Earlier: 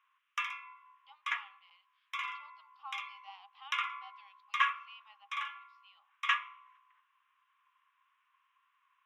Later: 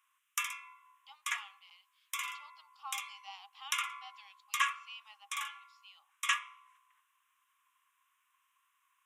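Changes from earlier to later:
background -4.5 dB; master: remove air absorption 300 m

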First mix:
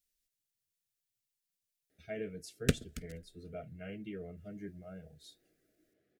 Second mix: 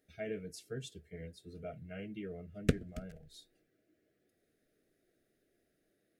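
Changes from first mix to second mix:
speech: entry -1.90 s; background: add high shelf 2600 Hz -10.5 dB

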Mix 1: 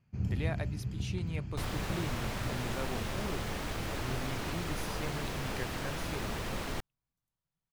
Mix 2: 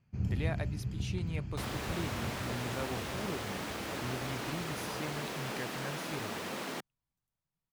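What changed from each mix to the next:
second sound: add HPF 180 Hz 24 dB/oct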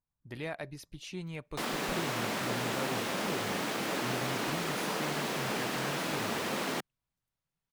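first sound: muted; second sound +5.5 dB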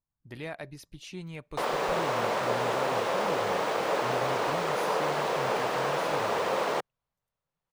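background: add ten-band EQ 250 Hz -9 dB, 500 Hz +11 dB, 1000 Hz +7 dB, 16000 Hz -10 dB

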